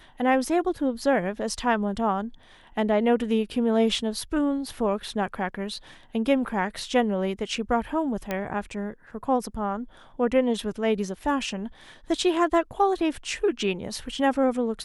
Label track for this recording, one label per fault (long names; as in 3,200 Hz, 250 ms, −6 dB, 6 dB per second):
8.310000	8.310000	click −14 dBFS